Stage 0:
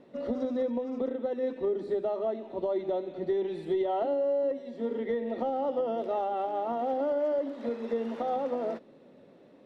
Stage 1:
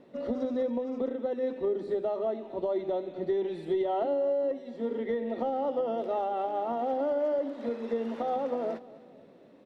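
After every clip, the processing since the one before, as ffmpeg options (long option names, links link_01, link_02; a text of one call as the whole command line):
ffmpeg -i in.wav -af "aecho=1:1:254|508|762:0.1|0.046|0.0212" out.wav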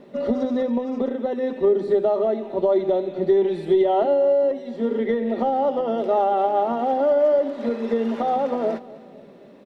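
ffmpeg -i in.wav -af "aecho=1:1:5:0.37,volume=8.5dB" out.wav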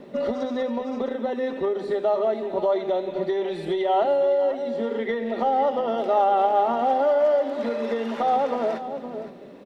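ffmpeg -i in.wav -filter_complex "[0:a]aecho=1:1:515:0.211,acrossover=split=660[link_01][link_02];[link_01]acompressor=threshold=-30dB:ratio=10[link_03];[link_03][link_02]amix=inputs=2:normalize=0,volume=3dB" out.wav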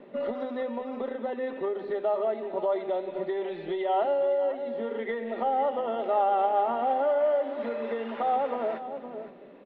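ffmpeg -i in.wav -af "lowpass=frequency=3200:width=0.5412,lowpass=frequency=3200:width=1.3066,equalizer=frequency=68:width_type=o:width=2.7:gain=-11,volume=-4dB" out.wav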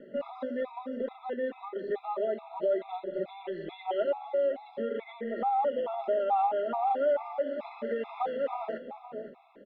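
ffmpeg -i in.wav -af "afftfilt=real='re*gt(sin(2*PI*2.3*pts/sr)*(1-2*mod(floor(b*sr/1024/680),2)),0)':imag='im*gt(sin(2*PI*2.3*pts/sr)*(1-2*mod(floor(b*sr/1024/680),2)),0)':win_size=1024:overlap=0.75" out.wav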